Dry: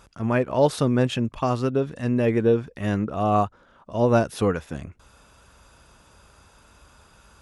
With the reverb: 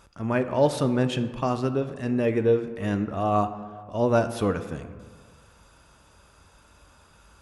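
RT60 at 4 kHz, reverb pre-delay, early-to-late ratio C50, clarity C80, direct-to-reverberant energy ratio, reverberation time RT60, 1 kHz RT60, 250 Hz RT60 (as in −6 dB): 0.90 s, 3 ms, 11.5 dB, 12.5 dB, 9.0 dB, 1.7 s, 1.7 s, 1.7 s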